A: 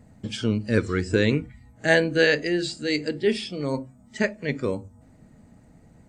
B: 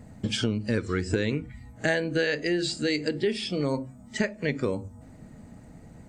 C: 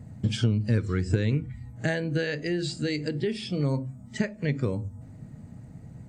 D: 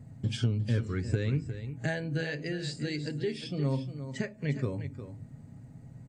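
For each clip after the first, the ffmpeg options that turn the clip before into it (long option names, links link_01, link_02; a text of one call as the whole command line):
ffmpeg -i in.wav -af "acompressor=threshold=-28dB:ratio=6,volume=5dB" out.wav
ffmpeg -i in.wav -af "equalizer=frequency=120:width_type=o:width=1.3:gain=13,volume=-4.5dB" out.wav
ffmpeg -i in.wav -af "aecho=1:1:7.4:0.35,aecho=1:1:356:0.282,volume=-5.5dB" out.wav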